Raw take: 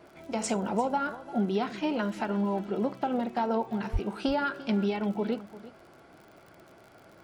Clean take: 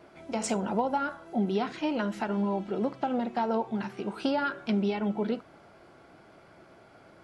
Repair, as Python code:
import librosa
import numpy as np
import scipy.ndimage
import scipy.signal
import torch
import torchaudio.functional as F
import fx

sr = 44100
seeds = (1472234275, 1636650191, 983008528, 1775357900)

y = fx.fix_declick_ar(x, sr, threshold=6.5)
y = fx.highpass(y, sr, hz=140.0, slope=24, at=(3.92, 4.04), fade=0.02)
y = fx.fix_echo_inverse(y, sr, delay_ms=345, level_db=-17.0)